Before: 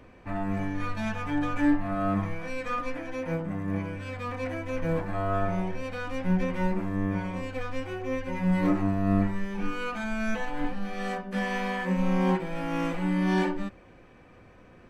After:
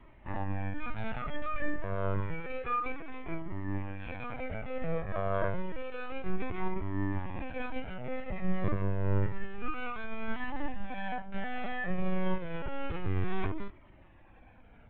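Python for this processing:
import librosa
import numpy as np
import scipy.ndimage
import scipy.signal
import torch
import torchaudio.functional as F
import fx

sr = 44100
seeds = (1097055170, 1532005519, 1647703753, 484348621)

y = fx.lpc_vocoder(x, sr, seeds[0], excitation='pitch_kept', order=10)
y = fx.quant_float(y, sr, bits=8)
y = fx.comb_cascade(y, sr, direction='falling', hz=0.29)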